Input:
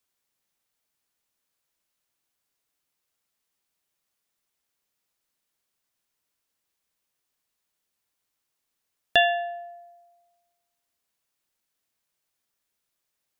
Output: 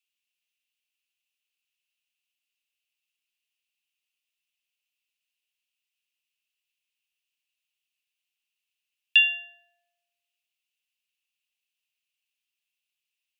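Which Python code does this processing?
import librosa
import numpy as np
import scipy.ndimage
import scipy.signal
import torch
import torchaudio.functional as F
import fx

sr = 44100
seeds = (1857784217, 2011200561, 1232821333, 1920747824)

y = fx.highpass_res(x, sr, hz=2700.0, q=7.6)
y = y * librosa.db_to_amplitude(-9.0)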